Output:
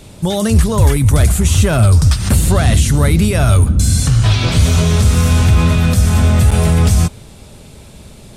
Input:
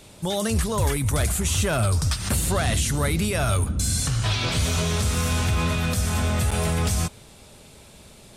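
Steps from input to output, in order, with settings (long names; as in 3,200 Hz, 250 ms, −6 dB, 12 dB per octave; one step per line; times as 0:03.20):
low-shelf EQ 320 Hz +8.5 dB
level +5.5 dB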